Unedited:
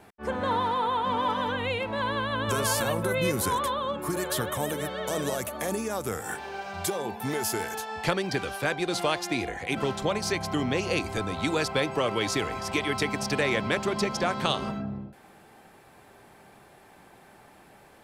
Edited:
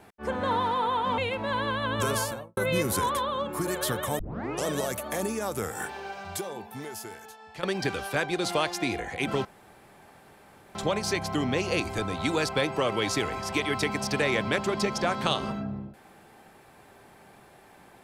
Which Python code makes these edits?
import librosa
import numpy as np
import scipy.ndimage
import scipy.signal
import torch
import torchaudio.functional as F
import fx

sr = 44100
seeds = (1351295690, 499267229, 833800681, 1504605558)

y = fx.studio_fade_out(x, sr, start_s=2.58, length_s=0.48)
y = fx.edit(y, sr, fx.cut(start_s=1.18, length_s=0.49),
    fx.tape_start(start_s=4.68, length_s=0.47),
    fx.fade_out_to(start_s=6.38, length_s=1.74, curve='qua', floor_db=-14.0),
    fx.insert_room_tone(at_s=9.94, length_s=1.3), tone=tone)